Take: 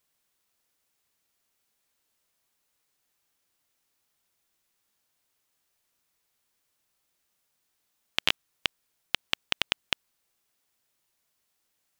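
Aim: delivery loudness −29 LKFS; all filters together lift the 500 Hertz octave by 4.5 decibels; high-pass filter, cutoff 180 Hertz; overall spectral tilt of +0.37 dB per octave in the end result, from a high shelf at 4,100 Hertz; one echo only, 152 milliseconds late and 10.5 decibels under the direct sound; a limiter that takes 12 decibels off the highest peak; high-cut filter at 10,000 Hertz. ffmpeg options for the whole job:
ffmpeg -i in.wav -af "highpass=180,lowpass=10000,equalizer=frequency=500:width_type=o:gain=5.5,highshelf=frequency=4100:gain=6,alimiter=limit=-12.5dB:level=0:latency=1,aecho=1:1:152:0.299,volume=11.5dB" out.wav

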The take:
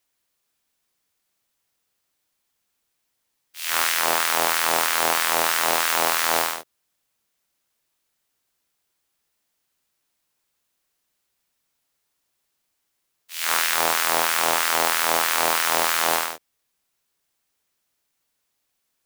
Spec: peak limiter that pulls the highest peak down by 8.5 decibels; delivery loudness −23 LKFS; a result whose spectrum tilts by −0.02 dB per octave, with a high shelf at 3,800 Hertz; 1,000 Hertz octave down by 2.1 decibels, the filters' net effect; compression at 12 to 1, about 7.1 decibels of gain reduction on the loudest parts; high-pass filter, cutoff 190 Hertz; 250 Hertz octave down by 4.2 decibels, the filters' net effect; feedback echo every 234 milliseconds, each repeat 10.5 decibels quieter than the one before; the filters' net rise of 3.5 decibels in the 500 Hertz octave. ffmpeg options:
ffmpeg -i in.wav -af "highpass=190,equalizer=frequency=250:width_type=o:gain=-9,equalizer=frequency=500:width_type=o:gain=8,equalizer=frequency=1000:width_type=o:gain=-4,highshelf=frequency=3800:gain=-8,acompressor=threshold=-23dB:ratio=12,alimiter=limit=-18dB:level=0:latency=1,aecho=1:1:234|468|702:0.299|0.0896|0.0269,volume=10dB" out.wav

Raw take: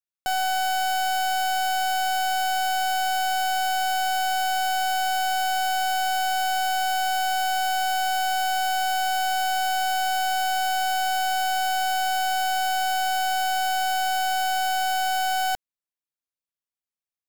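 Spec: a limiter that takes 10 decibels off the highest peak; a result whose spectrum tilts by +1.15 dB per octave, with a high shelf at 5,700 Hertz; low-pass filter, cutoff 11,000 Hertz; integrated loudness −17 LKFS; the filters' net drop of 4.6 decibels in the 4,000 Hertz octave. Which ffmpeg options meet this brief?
ffmpeg -i in.wav -af "lowpass=11000,equalizer=frequency=4000:width_type=o:gain=-4.5,highshelf=frequency=5700:gain=-6.5,volume=18dB,alimiter=limit=-15.5dB:level=0:latency=1" out.wav

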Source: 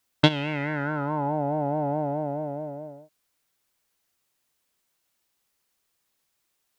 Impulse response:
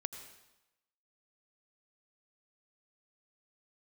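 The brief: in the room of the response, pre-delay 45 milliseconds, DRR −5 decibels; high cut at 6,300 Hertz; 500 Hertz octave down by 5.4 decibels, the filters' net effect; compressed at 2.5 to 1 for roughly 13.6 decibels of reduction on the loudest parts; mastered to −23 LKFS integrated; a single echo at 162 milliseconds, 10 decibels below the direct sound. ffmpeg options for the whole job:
-filter_complex "[0:a]lowpass=6300,equalizer=frequency=500:width_type=o:gain=-7,acompressor=threshold=-35dB:ratio=2.5,aecho=1:1:162:0.316,asplit=2[link_01][link_02];[1:a]atrim=start_sample=2205,adelay=45[link_03];[link_02][link_03]afir=irnorm=-1:irlink=0,volume=6dB[link_04];[link_01][link_04]amix=inputs=2:normalize=0,volume=7.5dB"

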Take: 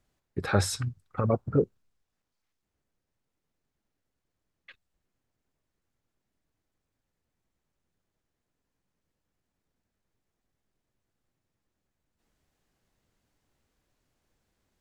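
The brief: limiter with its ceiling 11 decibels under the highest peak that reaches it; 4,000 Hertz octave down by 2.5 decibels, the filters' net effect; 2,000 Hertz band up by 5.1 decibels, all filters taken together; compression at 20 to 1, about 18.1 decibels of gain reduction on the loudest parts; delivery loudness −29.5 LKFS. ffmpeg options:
ffmpeg -i in.wav -af "equalizer=frequency=2000:width_type=o:gain=8.5,equalizer=frequency=4000:width_type=o:gain=-5,acompressor=threshold=-35dB:ratio=20,volume=16.5dB,alimiter=limit=-16.5dB:level=0:latency=1" out.wav

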